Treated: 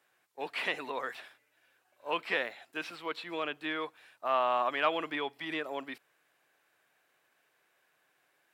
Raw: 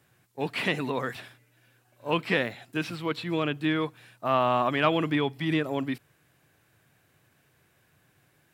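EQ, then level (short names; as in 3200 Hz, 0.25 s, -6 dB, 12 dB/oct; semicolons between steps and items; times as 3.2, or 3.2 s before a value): HPF 540 Hz 12 dB/oct; high shelf 4700 Hz -6 dB; -3.0 dB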